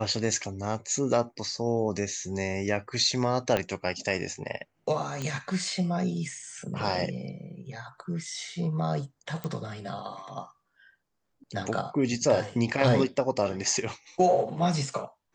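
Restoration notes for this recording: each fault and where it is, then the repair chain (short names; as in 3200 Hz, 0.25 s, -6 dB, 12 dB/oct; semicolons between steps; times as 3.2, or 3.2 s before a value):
3.57 pop -12 dBFS
5.22 pop -19 dBFS
9.44 pop -20 dBFS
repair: de-click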